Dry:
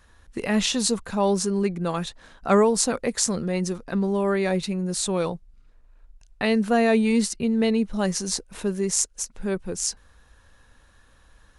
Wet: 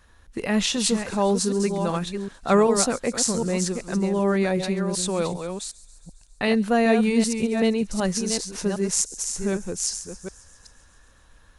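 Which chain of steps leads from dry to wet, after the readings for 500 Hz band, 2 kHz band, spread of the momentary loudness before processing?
+0.5 dB, +1.0 dB, 10 LU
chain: chunks repeated in reverse 381 ms, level -7 dB; feedback echo behind a high-pass 136 ms, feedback 70%, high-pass 5 kHz, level -16 dB

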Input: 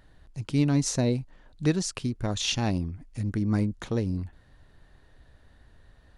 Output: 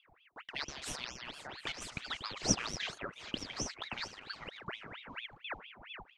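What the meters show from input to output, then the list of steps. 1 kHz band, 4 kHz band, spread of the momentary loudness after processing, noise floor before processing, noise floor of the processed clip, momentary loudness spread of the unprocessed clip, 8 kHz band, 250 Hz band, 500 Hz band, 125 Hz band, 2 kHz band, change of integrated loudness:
-4.0 dB, -3.5 dB, 13 LU, -58 dBFS, -67 dBFS, 11 LU, -4.0 dB, -18.0 dB, -13.5 dB, -21.0 dB, -0.5 dB, -12.0 dB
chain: backward echo that repeats 382 ms, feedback 64%, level -5 dB; auto-wah 320–3000 Hz, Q 13, up, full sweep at -21 dBFS; ring modulator with a swept carrier 1.7 kHz, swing 80%, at 4.4 Hz; trim +15.5 dB

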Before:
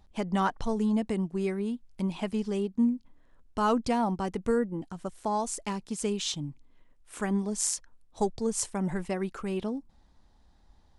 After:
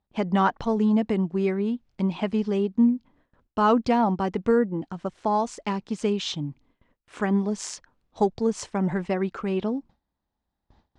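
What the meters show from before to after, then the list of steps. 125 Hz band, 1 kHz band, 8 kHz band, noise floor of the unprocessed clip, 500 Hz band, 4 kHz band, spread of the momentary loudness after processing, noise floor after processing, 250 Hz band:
+5.5 dB, +6.0 dB, -7.0 dB, -61 dBFS, +6.0 dB, +2.0 dB, 10 LU, -83 dBFS, +5.5 dB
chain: gate with hold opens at -49 dBFS; high-pass 100 Hz 6 dB/octave; distance through air 150 m; trim +6.5 dB

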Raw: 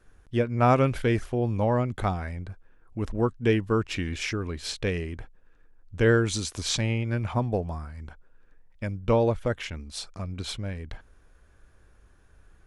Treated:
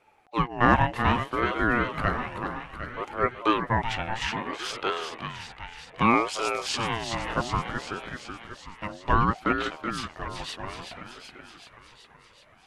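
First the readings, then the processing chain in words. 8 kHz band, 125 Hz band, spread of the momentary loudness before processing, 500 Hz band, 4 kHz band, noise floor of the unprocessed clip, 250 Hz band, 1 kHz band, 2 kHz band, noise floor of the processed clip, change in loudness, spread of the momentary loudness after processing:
-4.0 dB, -5.5 dB, 15 LU, -4.5 dB, +1.5 dB, -58 dBFS, -1.5 dB, +6.5 dB, +5.5 dB, -56 dBFS, 0.0 dB, 17 LU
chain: tone controls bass -14 dB, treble -9 dB; on a send: thinning echo 378 ms, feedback 68%, high-pass 330 Hz, level -6.5 dB; on the sum: ring modulator with a swept carrier 650 Hz, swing 35%, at 0.62 Hz; trim +5.5 dB

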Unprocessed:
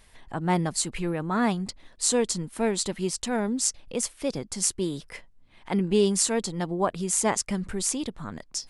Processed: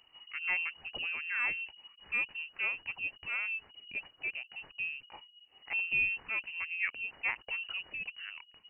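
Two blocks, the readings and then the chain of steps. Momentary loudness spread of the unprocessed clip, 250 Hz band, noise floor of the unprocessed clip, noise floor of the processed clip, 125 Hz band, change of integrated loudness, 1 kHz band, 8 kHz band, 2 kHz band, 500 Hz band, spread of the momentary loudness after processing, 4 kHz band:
9 LU, under -30 dB, -56 dBFS, -65 dBFS, under -30 dB, -8.0 dB, -17.0 dB, under -40 dB, +6.0 dB, -30.0 dB, 13 LU, -9.5 dB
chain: frequency inversion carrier 2.9 kHz; trim -9 dB

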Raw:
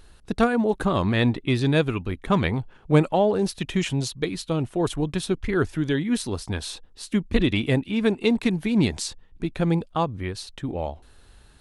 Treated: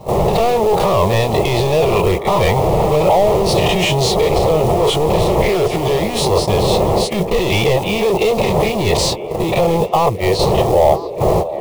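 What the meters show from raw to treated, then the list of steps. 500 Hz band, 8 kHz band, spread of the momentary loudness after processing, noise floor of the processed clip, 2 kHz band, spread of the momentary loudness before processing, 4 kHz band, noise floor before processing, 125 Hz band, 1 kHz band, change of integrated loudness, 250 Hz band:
+13.5 dB, +11.0 dB, 3 LU, -23 dBFS, +7.0 dB, 11 LU, +12.0 dB, -53 dBFS, +7.5 dB, +14.5 dB, +9.5 dB, +2.5 dB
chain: every event in the spectrogram widened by 60 ms; wind noise 260 Hz -23 dBFS; gate -27 dBFS, range -17 dB; treble shelf 3.9 kHz -7 dB; overdrive pedal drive 30 dB, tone 1.5 kHz, clips at -3 dBFS; in parallel at +2.5 dB: compressor with a negative ratio -14 dBFS, ratio -0.5; on the sum: companded quantiser 6-bit; static phaser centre 640 Hz, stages 4; on a send: repeats whose band climbs or falls 328 ms, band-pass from 330 Hz, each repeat 0.7 oct, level -9 dB; on the sum: trim -3.5 dB

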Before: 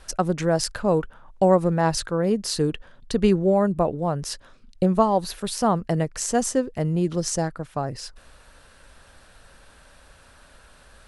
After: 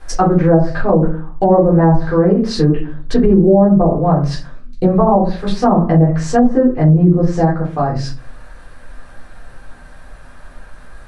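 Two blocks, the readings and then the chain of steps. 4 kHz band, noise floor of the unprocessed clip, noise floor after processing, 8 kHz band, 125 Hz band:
+0.5 dB, -53 dBFS, -38 dBFS, -6.5 dB, +13.0 dB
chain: FFT filter 1.9 kHz 0 dB, 3 kHz -8 dB, 5.9 kHz -6 dB; simulated room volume 230 m³, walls furnished, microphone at 3.8 m; low-pass that closes with the level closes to 730 Hz, closed at -7 dBFS; dynamic bell 4.6 kHz, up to +6 dB, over -43 dBFS, Q 1.1; loudness maximiser +3 dB; trim -1 dB

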